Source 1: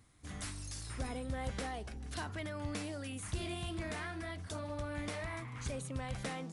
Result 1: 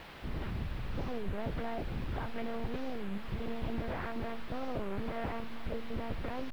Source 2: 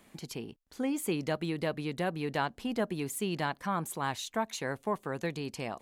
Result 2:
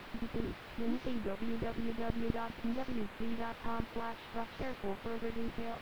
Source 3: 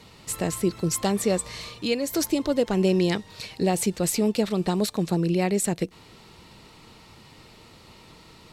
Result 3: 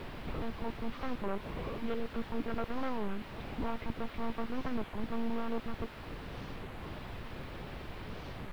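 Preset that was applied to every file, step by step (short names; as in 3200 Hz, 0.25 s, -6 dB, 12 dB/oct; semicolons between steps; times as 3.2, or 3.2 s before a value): Wiener smoothing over 25 samples; wavefolder -21 dBFS; careless resampling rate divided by 4×, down filtered, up hold; compressor, threshold -39 dBFS; limiter -35.5 dBFS; monotone LPC vocoder at 8 kHz 230 Hz; requantised 8-bit, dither triangular; air absorption 420 m; record warp 33 1/3 rpm, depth 250 cents; gain +9 dB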